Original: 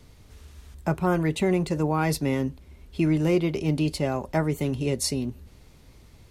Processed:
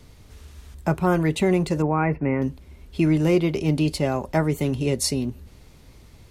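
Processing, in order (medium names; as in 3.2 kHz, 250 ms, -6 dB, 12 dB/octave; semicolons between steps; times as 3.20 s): 1.82–2.42 s: elliptic low-pass 2.4 kHz, stop band 40 dB; trim +3 dB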